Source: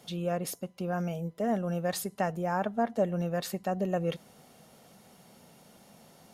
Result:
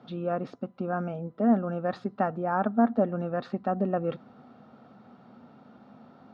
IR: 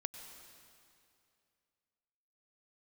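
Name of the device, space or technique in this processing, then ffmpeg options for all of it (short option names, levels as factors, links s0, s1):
kitchen radio: -af "bass=f=250:g=13,treble=f=4000:g=-6,highpass=170,equalizer=f=170:t=q:w=4:g=-10,equalizer=f=250:t=q:w=4:g=7,equalizer=f=770:t=q:w=4:g=4,equalizer=f=1300:t=q:w=4:g=10,equalizer=f=2100:t=q:w=4:g=-7,equalizer=f=3000:t=q:w=4:g=-8,lowpass=f=3700:w=0.5412,lowpass=f=3700:w=1.3066"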